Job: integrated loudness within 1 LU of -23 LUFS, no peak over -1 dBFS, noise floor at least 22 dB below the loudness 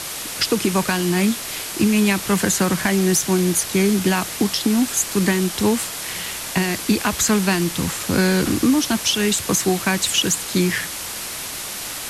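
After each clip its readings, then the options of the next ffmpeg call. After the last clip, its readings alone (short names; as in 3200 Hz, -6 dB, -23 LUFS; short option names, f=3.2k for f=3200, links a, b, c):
noise floor -30 dBFS; noise floor target -42 dBFS; loudness -19.5 LUFS; peak -5.0 dBFS; loudness target -23.0 LUFS
-> -af "afftdn=nr=12:nf=-30"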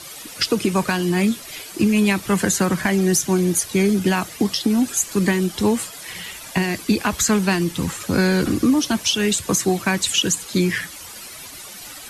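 noise floor -38 dBFS; noise floor target -42 dBFS
-> -af "afftdn=nr=6:nf=-38"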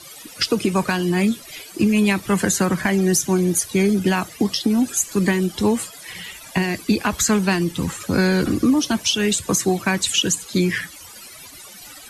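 noise floor -41 dBFS; noise floor target -42 dBFS
-> -af "afftdn=nr=6:nf=-41"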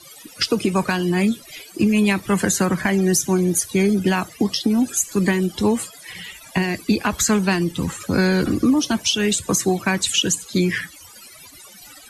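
noise floor -44 dBFS; loudness -20.0 LUFS; peak -6.0 dBFS; loudness target -23.0 LUFS
-> -af "volume=-3dB"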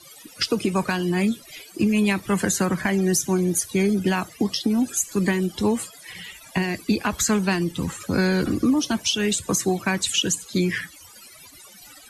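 loudness -23.0 LUFS; peak -9.0 dBFS; noise floor -47 dBFS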